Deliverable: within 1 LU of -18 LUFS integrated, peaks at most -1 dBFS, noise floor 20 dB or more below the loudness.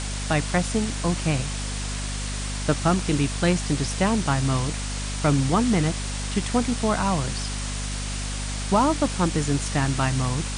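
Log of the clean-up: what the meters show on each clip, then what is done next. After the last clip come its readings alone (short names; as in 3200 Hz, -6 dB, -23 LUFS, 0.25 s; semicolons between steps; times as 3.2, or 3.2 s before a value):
hum 50 Hz; harmonics up to 250 Hz; hum level -28 dBFS; noise floor -29 dBFS; noise floor target -45 dBFS; loudness -24.5 LUFS; peak -8.5 dBFS; loudness target -18.0 LUFS
-> de-hum 50 Hz, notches 5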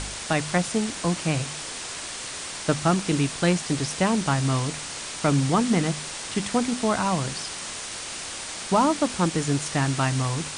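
hum none; noise floor -35 dBFS; noise floor target -45 dBFS
-> denoiser 10 dB, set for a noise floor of -35 dBFS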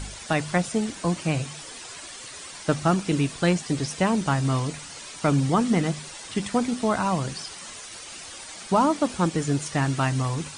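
noise floor -41 dBFS; noise floor target -45 dBFS
-> denoiser 6 dB, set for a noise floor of -41 dBFS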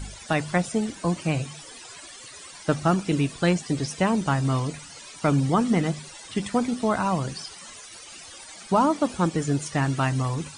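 noise floor -44 dBFS; noise floor target -45 dBFS
-> denoiser 6 dB, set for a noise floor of -44 dBFS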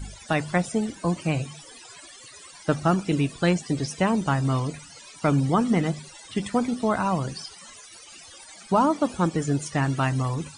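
noise floor -47 dBFS; loudness -25.0 LUFS; peak -9.0 dBFS; loudness target -18.0 LUFS
-> gain +7 dB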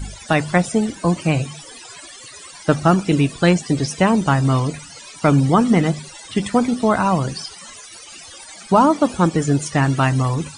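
loudness -18.0 LUFS; peak -2.0 dBFS; noise floor -40 dBFS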